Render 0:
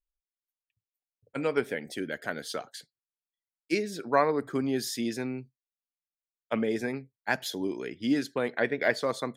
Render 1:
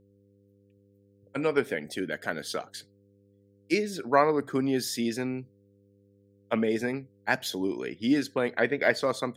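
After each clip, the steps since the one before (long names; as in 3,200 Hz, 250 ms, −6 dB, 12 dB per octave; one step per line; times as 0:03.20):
de-essing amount 55%
hum with harmonics 100 Hz, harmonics 5, −64 dBFS −2 dB per octave
level +2 dB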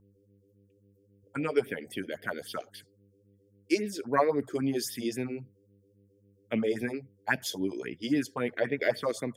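notch filter 4,000 Hz, Q 5.8
all-pass phaser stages 4, 3.7 Hz, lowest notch 140–1,300 Hz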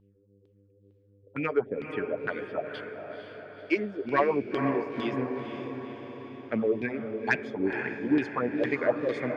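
auto-filter low-pass saw down 2.2 Hz 370–3,500 Hz
feedback delay with all-pass diffusion 488 ms, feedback 58%, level −7 dB
soft clipping −11.5 dBFS, distortion −24 dB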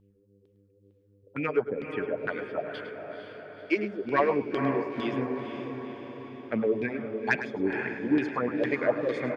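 single-tap delay 105 ms −12 dB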